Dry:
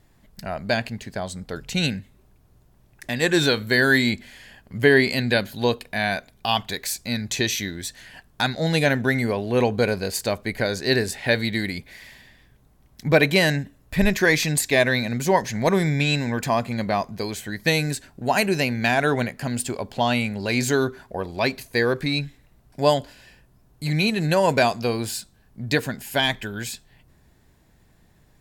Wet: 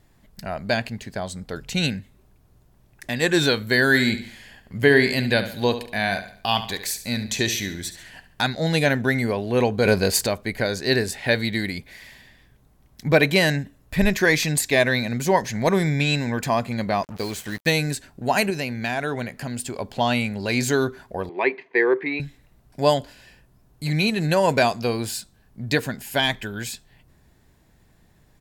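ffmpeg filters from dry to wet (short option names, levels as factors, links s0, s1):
-filter_complex "[0:a]asplit=3[s0][s1][s2];[s0]afade=t=out:st=3.93:d=0.02[s3];[s1]aecho=1:1:70|140|210|280:0.251|0.103|0.0422|0.0173,afade=t=in:st=3.93:d=0.02,afade=t=out:st=8.41:d=0.02[s4];[s2]afade=t=in:st=8.41:d=0.02[s5];[s3][s4][s5]amix=inputs=3:normalize=0,asettb=1/sr,asplit=3[s6][s7][s8];[s6]atrim=end=9.854[s9];[s7]atrim=start=9.85:end=10.27,asetpts=PTS-STARTPTS,afade=t=in:d=0.004:c=qsin,afade=t=out:st=0.416:d=0.004:c=qsin,acontrast=71[s10];[s8]atrim=start=10.266[s11];[s9][s10]acrossfade=d=0.004:c1=hsin:c2=qsin[s12];[s12][s11]acrossfade=d=0.004:c1=qsin:c2=hsin,asettb=1/sr,asplit=3[s13][s14][s15];[s13]atrim=end=17.034[s16];[s14]atrim=start=17.03:end=17.71,asetpts=PTS-STARTPTS,afade=t=in:d=0.004:c=qsin,afade=t=out:st=0.676:d=0.004:c=qsin,acrusher=bits=5:mix=0:aa=0.5[s17];[s15]atrim=start=17.706[s18];[s16][s17]acrossfade=d=0.004:c1=hsin:c2=qsin[s19];[s19][s18]acrossfade=d=0.004:c1=qsin:c2=hsin,asettb=1/sr,asplit=3[s20][s21][s22];[s20]atrim=end=18.504[s23];[s21]atrim=start=18.5:end=19.76,asetpts=PTS-STARTPTS,afade=t=in:d=0.004:c=qsin,afade=t=out:st=1.256:d=0.004:c=qsin,acompressor=threshold=0.0282:ratio=1.5:attack=3.2:release=140:knee=1:detection=peak[s24];[s22]atrim=start=19.756[s25];[s23][s24]acrossfade=d=0.004:c1=hsin:c2=qsin[s26];[s26][s25]acrossfade=d=0.004:c1=qsin:c2=hsin,asettb=1/sr,asplit=3[s27][s28][s29];[s27]atrim=end=21.294[s30];[s28]atrim=start=21.29:end=22.2,asetpts=PTS-STARTPTS,afade=t=in:d=0.004:c=qsin,afade=t=out:st=0.906:d=0.004:c=qsin,highpass=f=240:w=0.5412,highpass=f=240:w=1.3066,equalizer=f=240:t=q:w=4:g=-9,equalizer=f=380:t=q:w=4:g=9,equalizer=f=600:t=q:w=4:g=-7,equalizer=f=940:t=q:w=4:g=5,equalizer=f=1400:t=q:w=4:g=-6,equalizer=f=2000:t=q:w=4:g=8,lowpass=f=2600:w=0.5412,lowpass=f=2600:w=1.3066[s31];[s29]atrim=start=22.196[s32];[s30][s31]acrossfade=d=0.004:c1=hsin:c2=qsin[s33];[s33][s32]acrossfade=d=0.004:c1=qsin:c2=hsin"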